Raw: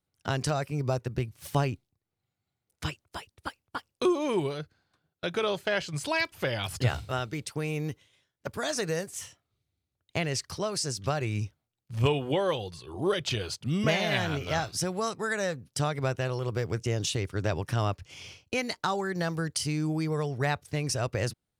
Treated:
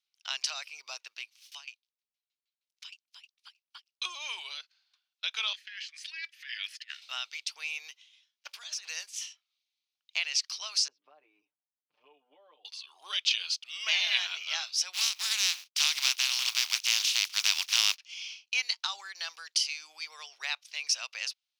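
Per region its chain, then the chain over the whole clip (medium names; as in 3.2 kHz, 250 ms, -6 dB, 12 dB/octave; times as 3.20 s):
1.36–4.04 s: peaking EQ 320 Hz -15 dB 2.3 oct + sawtooth tremolo in dB decaying 6.4 Hz, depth 20 dB
5.53–7.02 s: peaking EQ 9.5 kHz +3 dB 0.22 oct + compressor with a negative ratio -30 dBFS, ratio -0.5 + ladder high-pass 1.7 kHz, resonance 80%
8.47–8.88 s: compressor with a negative ratio -36 dBFS, ratio -0.5 + hard clipper -32.5 dBFS
10.88–12.65 s: resonant low-pass 280 Hz, resonance Q 2.1 + comb 6.7 ms, depth 94% + three bands compressed up and down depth 70%
14.93–17.96 s: spectral contrast reduction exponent 0.28 + expander -48 dBFS + resonant low shelf 130 Hz -13 dB, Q 3
whole clip: high-pass 960 Hz 24 dB/octave; high-order bell 3.8 kHz +14.5 dB; trim -8 dB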